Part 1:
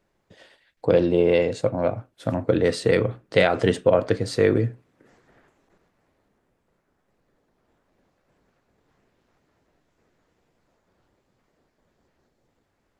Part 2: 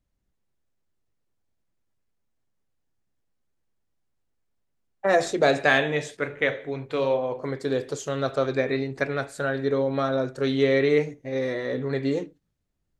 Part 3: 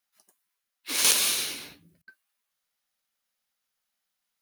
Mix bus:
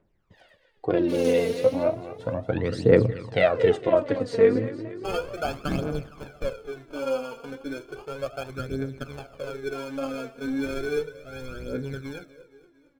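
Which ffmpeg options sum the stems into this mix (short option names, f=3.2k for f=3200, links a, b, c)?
-filter_complex "[0:a]volume=-4.5dB,asplit=2[a][b];[b]volume=-11.5dB[c];[1:a]acrusher=samples=23:mix=1:aa=0.000001,volume=-9.5dB,asplit=2[d][e];[e]volume=-17.5dB[f];[2:a]acompressor=threshold=-30dB:ratio=2,adelay=200,volume=-8.5dB,asplit=2[g][h];[h]volume=-20dB[i];[c][f][i]amix=inputs=3:normalize=0,aecho=0:1:231|462|693|924|1155|1386|1617|1848:1|0.54|0.292|0.157|0.085|0.0459|0.0248|0.0134[j];[a][d][g][j]amix=inputs=4:normalize=0,aphaser=in_gain=1:out_gain=1:delay=4.5:decay=0.66:speed=0.34:type=triangular,lowpass=f=2.3k:p=1"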